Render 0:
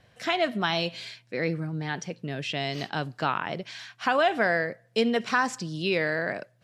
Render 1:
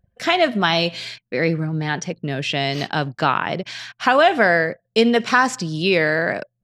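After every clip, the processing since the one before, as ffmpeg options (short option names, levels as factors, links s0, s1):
-af "anlmdn=0.00631,volume=2.66"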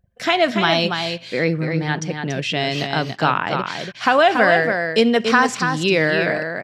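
-af "aecho=1:1:284:0.501"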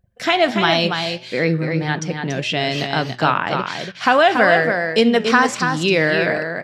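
-af "flanger=delay=7.9:depth=4.5:regen=86:speed=1.6:shape=sinusoidal,volume=1.88"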